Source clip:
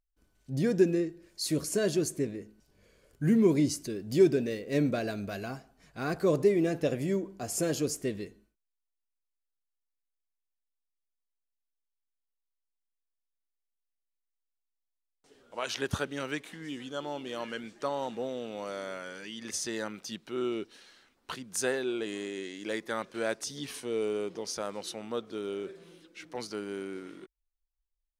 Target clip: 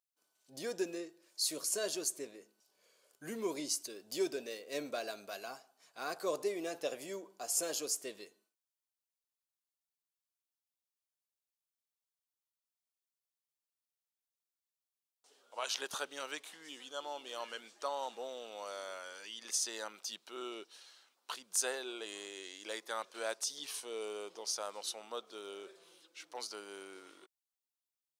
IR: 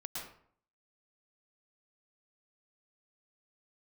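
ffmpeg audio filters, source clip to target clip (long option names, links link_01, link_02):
-af "highpass=840,equalizer=frequency=1900:width_type=o:width=1.1:gain=-9.5,volume=1.5dB"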